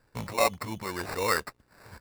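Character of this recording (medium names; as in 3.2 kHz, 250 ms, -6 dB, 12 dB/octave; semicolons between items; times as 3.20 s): aliases and images of a low sample rate 3.2 kHz, jitter 0%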